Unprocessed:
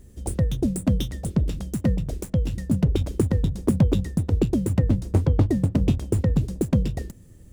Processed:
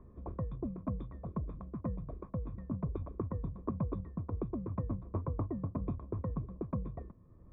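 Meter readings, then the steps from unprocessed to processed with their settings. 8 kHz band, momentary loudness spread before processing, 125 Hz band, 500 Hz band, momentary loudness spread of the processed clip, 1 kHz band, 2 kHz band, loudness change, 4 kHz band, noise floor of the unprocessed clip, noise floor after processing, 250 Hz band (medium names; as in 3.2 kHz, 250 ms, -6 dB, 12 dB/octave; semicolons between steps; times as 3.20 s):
under -40 dB, 5 LU, -16.0 dB, -14.0 dB, 4 LU, -6.5 dB, under -20 dB, -16.0 dB, under -35 dB, -47 dBFS, -57 dBFS, -15.5 dB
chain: cascade formant filter a; static phaser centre 2.8 kHz, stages 6; three bands compressed up and down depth 40%; trim +12 dB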